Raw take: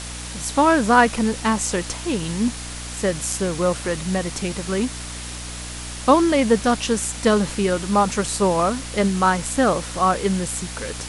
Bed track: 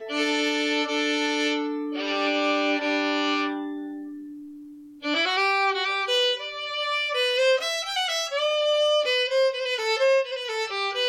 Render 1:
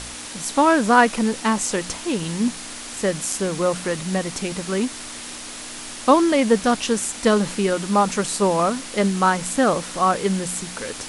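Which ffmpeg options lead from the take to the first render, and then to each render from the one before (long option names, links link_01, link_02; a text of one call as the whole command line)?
ffmpeg -i in.wav -af "bandreject=frequency=60:width_type=h:width=4,bandreject=frequency=120:width_type=h:width=4,bandreject=frequency=180:width_type=h:width=4" out.wav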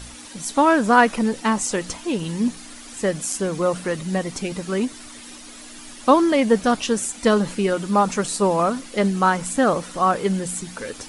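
ffmpeg -i in.wav -af "afftdn=noise_reduction=10:noise_floor=-35" out.wav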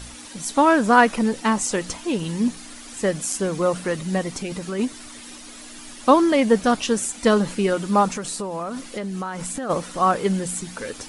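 ffmpeg -i in.wav -filter_complex "[0:a]asplit=3[link_01][link_02][link_03];[link_01]afade=type=out:start_time=4.29:duration=0.02[link_04];[link_02]acompressor=threshold=-25dB:ratio=3:attack=3.2:release=140:knee=1:detection=peak,afade=type=in:start_time=4.29:duration=0.02,afade=type=out:start_time=4.78:duration=0.02[link_05];[link_03]afade=type=in:start_time=4.78:duration=0.02[link_06];[link_04][link_05][link_06]amix=inputs=3:normalize=0,asplit=3[link_07][link_08][link_09];[link_07]afade=type=out:start_time=8.08:duration=0.02[link_10];[link_08]acompressor=threshold=-25dB:ratio=10:attack=3.2:release=140:knee=1:detection=peak,afade=type=in:start_time=8.08:duration=0.02,afade=type=out:start_time=9.69:duration=0.02[link_11];[link_09]afade=type=in:start_time=9.69:duration=0.02[link_12];[link_10][link_11][link_12]amix=inputs=3:normalize=0" out.wav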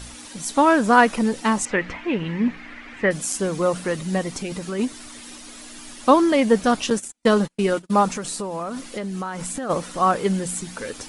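ffmpeg -i in.wav -filter_complex "[0:a]asettb=1/sr,asplit=3[link_01][link_02][link_03];[link_01]atrim=end=1.654[link_04];[link_02]atrim=start=1.65:end=3.11,asetpts=PTS-STARTPTS,afade=type=in:duration=0.004:curve=qsin,afade=type=out:start_time=1.456:duration=0.004:curve=qsin,lowpass=frequency=2100:width_type=q:width=3.2[link_05];[link_03]atrim=start=3.106[link_06];[link_04][link_05]acrossfade=duration=0.004:curve1=hsin:curve2=qsin[link_07];[link_07][link_06]acrossfade=duration=0.004:curve1=qsin:curve2=hsin,asettb=1/sr,asplit=3[link_08][link_09][link_10];[link_08]atrim=end=6.904[link_11];[link_09]atrim=start=6.9:end=7.94,asetpts=PTS-STARTPTS,afade=type=in:duration=0.004:curve=qsin,afade=type=out:start_time=1.036:duration=0.004:curve=qsin,agate=range=-42dB:threshold=-26dB:ratio=16:release=100:detection=peak[link_12];[link_10]atrim=start=7.936[link_13];[link_11][link_12]acrossfade=duration=0.004:curve1=hsin:curve2=qsin[link_14];[link_14][link_13]acrossfade=duration=0.004:curve1=qsin:curve2=hsin" out.wav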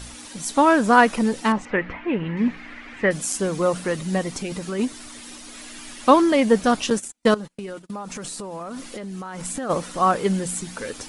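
ffmpeg -i in.wav -filter_complex "[0:a]asettb=1/sr,asplit=3[link_01][link_02][link_03];[link_01]atrim=end=1.524[link_04];[link_02]atrim=start=1.52:end=2.37,asetpts=PTS-STARTPTS,afade=type=in:duration=0.004:curve=qsin,afade=type=out:start_time=0.846:duration=0.004:curve=qsin,lowpass=2500[link_05];[link_03]atrim=start=2.366[link_06];[link_04][link_05]acrossfade=duration=0.004:curve1=hsin:curve2=qsin[link_07];[link_07][link_06]acrossfade=duration=0.004:curve1=qsin:curve2=hsin,asettb=1/sr,asplit=3[link_08][link_09][link_10];[link_08]atrim=end=5.544[link_11];[link_09]atrim=start=5.54:end=6.22,asetpts=PTS-STARTPTS,afade=type=in:duration=0.004:curve=qsin,afade=type=out:start_time=0.676:duration=0.004:curve=qsin,equalizer=frequency=2200:width_type=o:width=1.3:gain=4[link_12];[link_10]atrim=start=6.216[link_13];[link_11][link_12]acrossfade=duration=0.004:curve1=hsin:curve2=qsin[link_14];[link_14][link_13]acrossfade=duration=0.004:curve1=qsin:curve2=hsin,asettb=1/sr,asplit=3[link_15][link_16][link_17];[link_15]atrim=end=7.344[link_18];[link_16]atrim=start=7.34:end=9.45,asetpts=PTS-STARTPTS,afade=type=in:duration=0.004:curve=qsin,afade=type=out:start_time=2.106:duration=0.004:curve=qsin,acompressor=threshold=-29dB:ratio=12:attack=3.2:release=140:knee=1:detection=peak[link_19];[link_17]atrim=start=9.446[link_20];[link_18][link_19]acrossfade=duration=0.004:curve1=hsin:curve2=qsin[link_21];[link_21][link_20]acrossfade=duration=0.004:curve1=qsin:curve2=hsin" out.wav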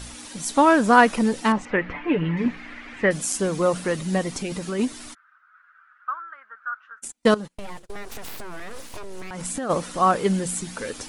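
ffmpeg -i in.wav -filter_complex "[0:a]asettb=1/sr,asplit=3[link_01][link_02][link_03];[link_01]atrim=end=1.944[link_04];[link_02]atrim=start=1.94:end=2.46,asetpts=PTS-STARTPTS,afade=type=in:duration=0.004:curve=qsin,afade=type=out:start_time=0.516:duration=0.004:curve=qsin,aecho=1:1:6.8:0.7,atrim=end_sample=22932[link_05];[link_03]atrim=start=2.456[link_06];[link_04][link_05]acrossfade=duration=0.004:curve1=hsin:curve2=qsin[link_07];[link_07][link_06]acrossfade=duration=0.004:curve1=qsin:curve2=hsin,asplit=3[link_08][link_09][link_10];[link_08]afade=type=out:start_time=5.13:duration=0.02[link_11];[link_09]asuperpass=centerf=1400:order=4:qfactor=4.9,afade=type=in:start_time=5.13:duration=0.02,afade=type=out:start_time=7.02:duration=0.02[link_12];[link_10]afade=type=in:start_time=7.02:duration=0.02[link_13];[link_11][link_12][link_13]amix=inputs=3:normalize=0,asettb=1/sr,asplit=3[link_14][link_15][link_16];[link_14]atrim=end=7.574[link_17];[link_15]atrim=start=7.57:end=9.31,asetpts=PTS-STARTPTS,afade=type=in:duration=0.004:curve=qsin,afade=type=out:start_time=1.736:duration=0.004:curve=qsin,aeval=exprs='abs(val(0))':channel_layout=same[link_18];[link_16]atrim=start=9.306[link_19];[link_17][link_18]acrossfade=duration=0.004:curve1=hsin:curve2=qsin[link_20];[link_20][link_19]acrossfade=duration=0.004:curve1=qsin:curve2=hsin" out.wav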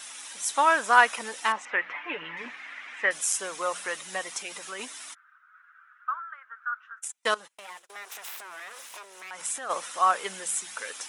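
ffmpeg -i in.wav -af "highpass=990,equalizer=frequency=4500:width=7.3:gain=-8" out.wav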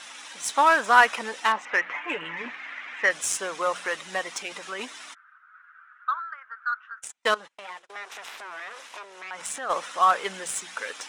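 ffmpeg -i in.wav -filter_complex "[0:a]asplit=2[link_01][link_02];[link_02]asoftclip=type=tanh:threshold=-21.5dB,volume=-3.5dB[link_03];[link_01][link_03]amix=inputs=2:normalize=0,adynamicsmooth=sensitivity=2.5:basefreq=4800" out.wav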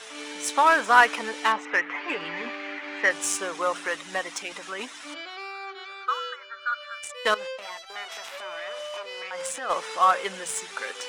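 ffmpeg -i in.wav -i bed.wav -filter_complex "[1:a]volume=-15dB[link_01];[0:a][link_01]amix=inputs=2:normalize=0" out.wav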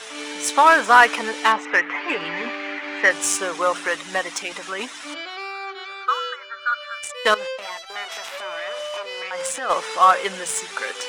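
ffmpeg -i in.wav -af "volume=5.5dB,alimiter=limit=-1dB:level=0:latency=1" out.wav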